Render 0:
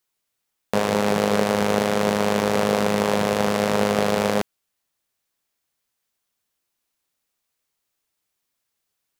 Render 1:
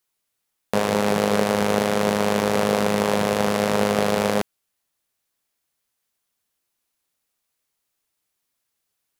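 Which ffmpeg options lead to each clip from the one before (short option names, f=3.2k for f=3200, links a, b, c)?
-af "equalizer=f=11k:w=2.1:g=3"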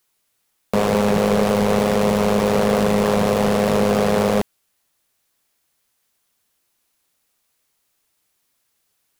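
-af "asoftclip=type=tanh:threshold=-18.5dB,volume=8dB"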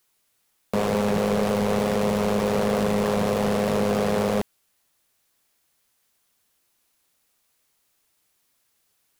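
-af "alimiter=limit=-16.5dB:level=0:latency=1:release=15"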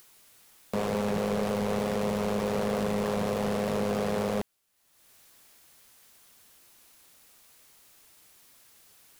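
-af "acompressor=mode=upward:threshold=-36dB:ratio=2.5,volume=-6dB"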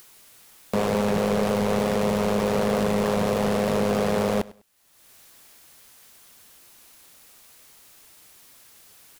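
-af "aecho=1:1:100|200:0.0944|0.0217,volume=6dB"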